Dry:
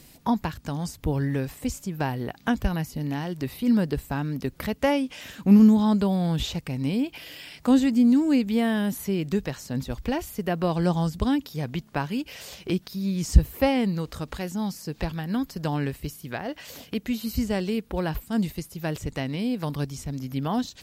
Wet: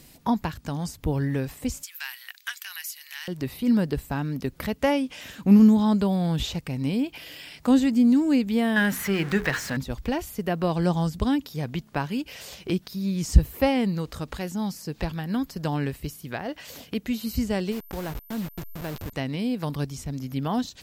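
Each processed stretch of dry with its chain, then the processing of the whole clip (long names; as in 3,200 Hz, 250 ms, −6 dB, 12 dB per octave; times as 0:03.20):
0:01.83–0:03.28: high-shelf EQ 7,400 Hz +8.5 dB + leveller curve on the samples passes 1 + inverse Chebyshev high-pass filter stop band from 280 Hz, stop band 80 dB
0:08.76–0:09.77: converter with a step at zero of −36.5 dBFS + parametric band 1,700 Hz +14.5 dB 1.3 octaves + mains-hum notches 60/120/180/240/300/360/420/480 Hz
0:17.71–0:19.12: hold until the input has moved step −29.5 dBFS + downward compressor 2 to 1, threshold −31 dBFS + steady tone 13,000 Hz −49 dBFS
whole clip: no processing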